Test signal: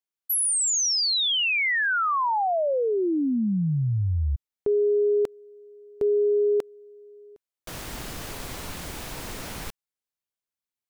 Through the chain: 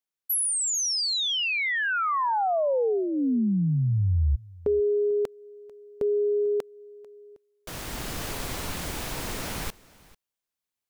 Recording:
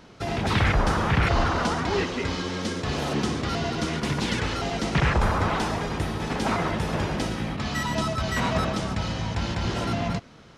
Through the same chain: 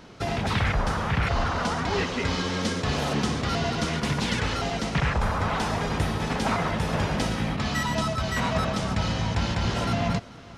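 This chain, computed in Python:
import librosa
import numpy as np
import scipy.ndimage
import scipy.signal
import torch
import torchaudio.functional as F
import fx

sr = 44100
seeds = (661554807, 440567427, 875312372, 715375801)

p1 = fx.dynamic_eq(x, sr, hz=340.0, q=3.5, threshold_db=-40.0, ratio=6.0, max_db=-7)
p2 = fx.rider(p1, sr, range_db=3, speed_s=0.5)
y = p2 + fx.echo_single(p2, sr, ms=444, db=-22.5, dry=0)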